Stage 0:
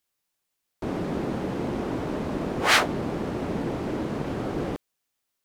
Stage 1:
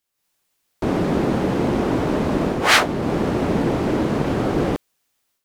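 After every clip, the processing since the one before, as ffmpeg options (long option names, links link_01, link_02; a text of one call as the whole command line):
ffmpeg -i in.wav -af "dynaudnorm=framelen=130:gausssize=3:maxgain=9dB" out.wav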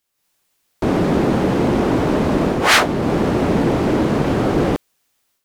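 ffmpeg -i in.wav -af "aeval=exprs='0.841*sin(PI/2*1.78*val(0)/0.841)':channel_layout=same,volume=-5dB" out.wav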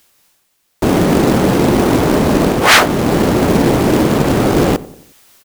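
ffmpeg -i in.wav -filter_complex "[0:a]areverse,acompressor=mode=upward:threshold=-38dB:ratio=2.5,areverse,acrusher=bits=3:mode=log:mix=0:aa=0.000001,asplit=2[link_01][link_02];[link_02]adelay=90,lowpass=frequency=1300:poles=1,volume=-18dB,asplit=2[link_03][link_04];[link_04]adelay=90,lowpass=frequency=1300:poles=1,volume=0.51,asplit=2[link_05][link_06];[link_06]adelay=90,lowpass=frequency=1300:poles=1,volume=0.51,asplit=2[link_07][link_08];[link_08]adelay=90,lowpass=frequency=1300:poles=1,volume=0.51[link_09];[link_01][link_03][link_05][link_07][link_09]amix=inputs=5:normalize=0,volume=4.5dB" out.wav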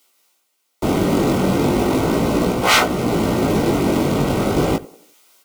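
ffmpeg -i in.wav -filter_complex "[0:a]acrossover=split=220|2500[link_01][link_02][link_03];[link_01]acrusher=bits=4:mix=0:aa=0.5[link_04];[link_04][link_02][link_03]amix=inputs=3:normalize=0,flanger=delay=16:depth=5.1:speed=0.37,asuperstop=centerf=1700:order=20:qfactor=6.9,volume=-2.5dB" out.wav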